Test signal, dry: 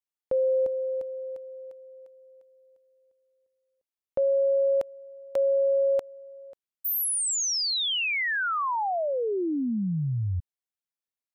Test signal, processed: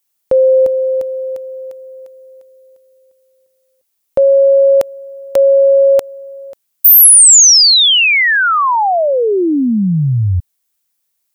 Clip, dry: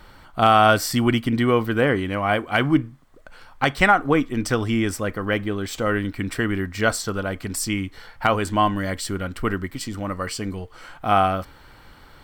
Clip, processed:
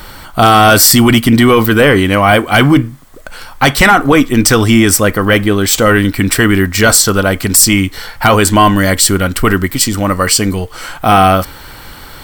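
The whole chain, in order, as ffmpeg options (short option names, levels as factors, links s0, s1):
-af "crystalizer=i=2:c=0,apsyclip=6.31,volume=0.841"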